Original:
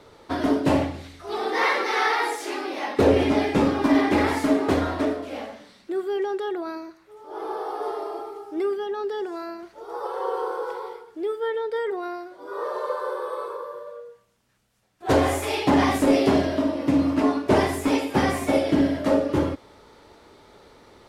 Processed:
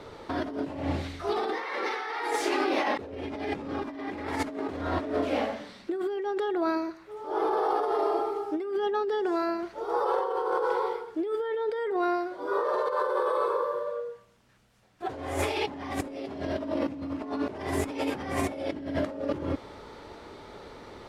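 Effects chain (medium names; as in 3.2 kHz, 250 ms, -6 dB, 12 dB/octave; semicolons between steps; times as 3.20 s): treble shelf 6.6 kHz -10 dB; compressor with a negative ratio -31 dBFS, ratio -1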